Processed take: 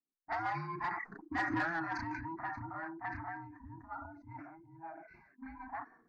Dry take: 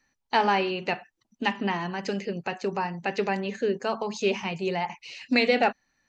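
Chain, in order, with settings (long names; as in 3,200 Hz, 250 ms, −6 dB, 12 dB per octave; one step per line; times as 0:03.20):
frequency inversion band by band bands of 500 Hz
source passing by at 0:01.59, 17 m/s, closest 1.3 metres
Butterworth band-reject 3,200 Hz, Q 1.9
low-shelf EQ 73 Hz −9 dB
phaser with its sweep stopped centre 1,300 Hz, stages 4
on a send: backwards echo 34 ms −7.5 dB
on the sum: rotating-speaker cabinet horn 5.5 Hz
parametric band 1,000 Hz +5.5 dB 1.6 octaves
downward compressor 3 to 1, threshold −49 dBFS, peak gain reduction 16.5 dB
mid-hump overdrive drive 14 dB, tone 2,600 Hz, clips at −35.5 dBFS
low-pass that shuts in the quiet parts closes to 320 Hz, open at −43 dBFS
level that may fall only so fast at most 52 dB per second
level +11 dB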